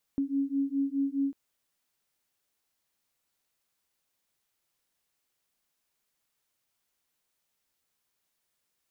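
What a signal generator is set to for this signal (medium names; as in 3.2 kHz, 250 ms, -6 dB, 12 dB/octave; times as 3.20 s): beating tones 274 Hz, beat 4.8 Hz, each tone -29.5 dBFS 1.15 s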